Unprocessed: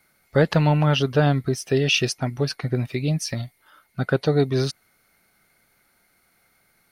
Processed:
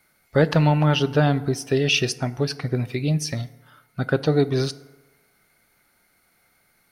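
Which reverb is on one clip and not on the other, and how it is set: FDN reverb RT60 1.2 s, low-frequency decay 0.8×, high-frequency decay 0.5×, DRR 14.5 dB

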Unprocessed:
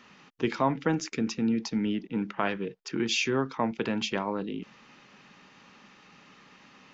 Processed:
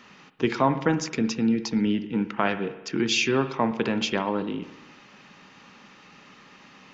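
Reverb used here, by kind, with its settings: spring tank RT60 1 s, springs 58 ms, chirp 65 ms, DRR 11.5 dB; trim +4 dB

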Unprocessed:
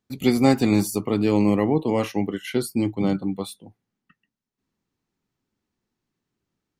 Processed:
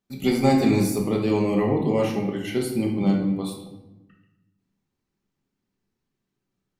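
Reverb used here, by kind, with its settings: simulated room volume 370 m³, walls mixed, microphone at 1.2 m; trim -4 dB

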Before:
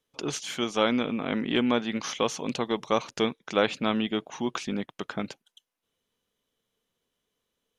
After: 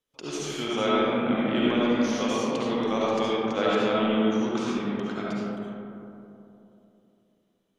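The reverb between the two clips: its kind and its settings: algorithmic reverb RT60 3.1 s, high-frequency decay 0.3×, pre-delay 30 ms, DRR -7 dB; trim -6 dB

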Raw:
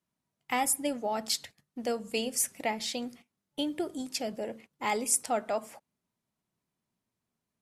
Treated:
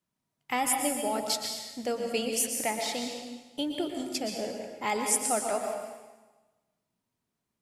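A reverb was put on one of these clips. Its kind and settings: plate-style reverb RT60 1.2 s, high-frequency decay 0.95×, pre-delay 105 ms, DRR 2.5 dB

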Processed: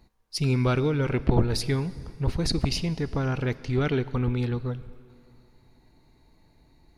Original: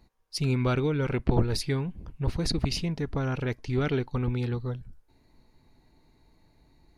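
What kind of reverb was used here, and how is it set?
plate-style reverb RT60 2.6 s, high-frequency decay 0.85×, DRR 16 dB; trim +2 dB

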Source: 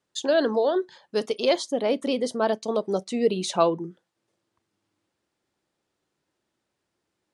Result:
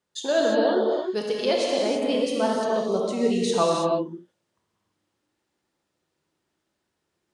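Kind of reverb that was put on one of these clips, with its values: gated-style reverb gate 360 ms flat, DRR -2.5 dB; trim -3 dB

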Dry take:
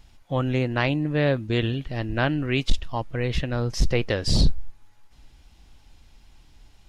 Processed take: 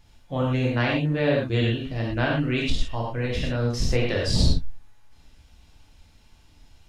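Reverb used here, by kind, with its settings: gated-style reverb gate 140 ms flat, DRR -3 dB; trim -4.5 dB

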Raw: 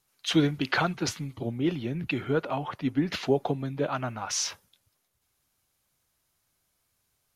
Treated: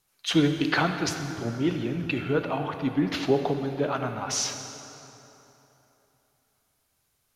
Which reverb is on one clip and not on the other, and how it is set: plate-style reverb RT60 3.3 s, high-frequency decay 0.7×, DRR 6 dB; trim +1 dB

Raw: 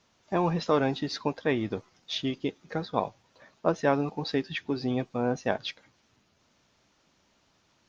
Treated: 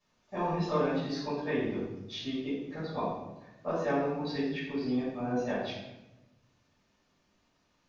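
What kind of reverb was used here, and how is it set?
simulated room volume 370 m³, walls mixed, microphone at 5.8 m; trim -18.5 dB

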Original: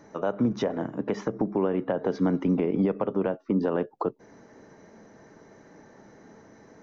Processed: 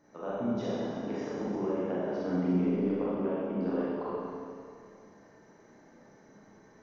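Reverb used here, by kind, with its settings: Schroeder reverb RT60 2.3 s, combs from 30 ms, DRR -8.5 dB; trim -14 dB

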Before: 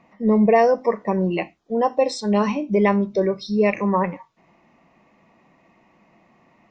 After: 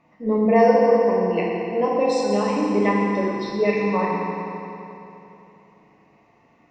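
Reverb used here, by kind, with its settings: FDN reverb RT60 3.1 s, high-frequency decay 0.85×, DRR -4.5 dB; trim -6 dB

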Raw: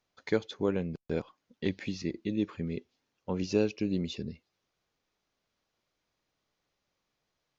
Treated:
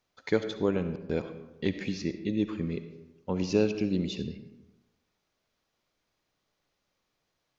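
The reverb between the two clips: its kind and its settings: algorithmic reverb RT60 1 s, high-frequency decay 0.55×, pre-delay 30 ms, DRR 9.5 dB; trim +2 dB

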